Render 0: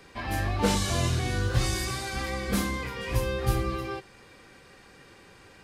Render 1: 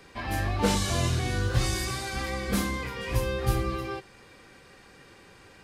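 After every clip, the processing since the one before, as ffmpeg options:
ffmpeg -i in.wav -af anull out.wav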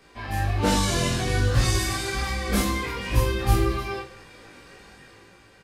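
ffmpeg -i in.wav -af "dynaudnorm=framelen=120:gausssize=11:maxgain=6dB,flanger=delay=16.5:depth=2.4:speed=1.3,aecho=1:1:20|48|87.2|142.1|218.9:0.631|0.398|0.251|0.158|0.1" out.wav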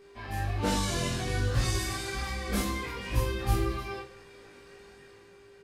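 ffmpeg -i in.wav -af "aeval=exprs='val(0)+0.00501*sin(2*PI*400*n/s)':channel_layout=same,volume=-6.5dB" out.wav

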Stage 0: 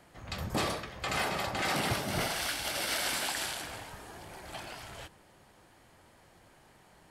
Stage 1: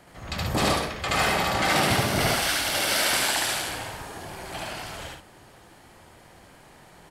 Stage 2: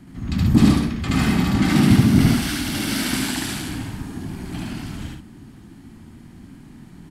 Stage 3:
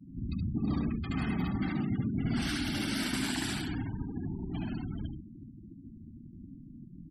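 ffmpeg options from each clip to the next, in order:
ffmpeg -i in.wav -af "aecho=1:1:72.89|128.3:1|0.501,volume=5.5dB" out.wav
ffmpeg -i in.wav -af "lowshelf=frequency=370:width_type=q:width=3:gain=13,volume=-2.5dB" out.wav
ffmpeg -i in.wav -af "areverse,acompressor=threshold=-22dB:ratio=12,areverse,afftfilt=real='re*gte(hypot(re,im),0.0251)':imag='im*gte(hypot(re,im),0.0251)':win_size=1024:overlap=0.75,volume=-5.5dB" out.wav

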